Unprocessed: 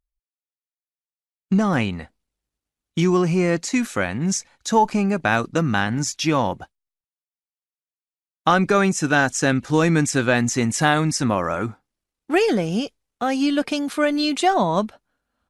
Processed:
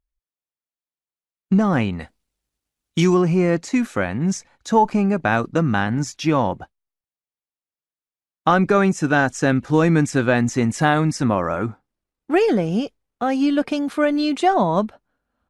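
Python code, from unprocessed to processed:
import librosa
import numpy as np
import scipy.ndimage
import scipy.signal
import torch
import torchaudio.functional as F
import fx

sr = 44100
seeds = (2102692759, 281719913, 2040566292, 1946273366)

y = fx.high_shelf(x, sr, hz=2500.0, db=fx.steps((0.0, -9.0), (1.99, 3.0), (3.13, -10.0)))
y = y * 10.0 ** (2.0 / 20.0)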